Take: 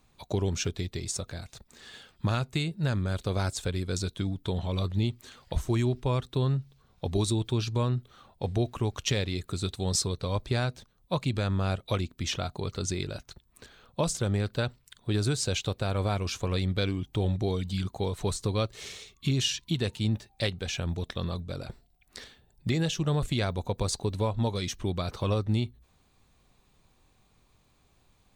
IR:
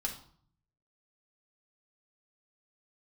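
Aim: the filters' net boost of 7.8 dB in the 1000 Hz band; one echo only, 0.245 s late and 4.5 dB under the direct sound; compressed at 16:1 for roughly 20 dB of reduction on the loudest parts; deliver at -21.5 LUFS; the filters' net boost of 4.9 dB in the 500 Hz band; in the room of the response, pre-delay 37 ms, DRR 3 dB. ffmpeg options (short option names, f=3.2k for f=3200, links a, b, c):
-filter_complex "[0:a]equalizer=f=500:t=o:g=4,equalizer=f=1k:t=o:g=8.5,acompressor=threshold=-39dB:ratio=16,aecho=1:1:245:0.596,asplit=2[a][b];[1:a]atrim=start_sample=2205,adelay=37[c];[b][c]afir=irnorm=-1:irlink=0,volume=-5dB[d];[a][d]amix=inputs=2:normalize=0,volume=20dB"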